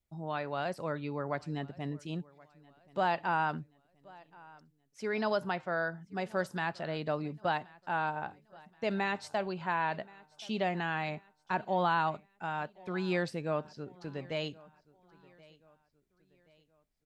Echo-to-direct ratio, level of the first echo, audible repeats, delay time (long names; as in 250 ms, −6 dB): −22.5 dB, −23.5 dB, 2, 1,077 ms